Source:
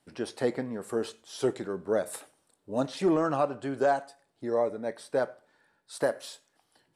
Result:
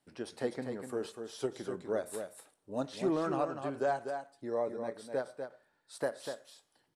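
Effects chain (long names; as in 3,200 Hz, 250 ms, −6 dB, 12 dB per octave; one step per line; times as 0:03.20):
single-tap delay 246 ms −7 dB
every ending faded ahead of time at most 310 dB per second
level −6.5 dB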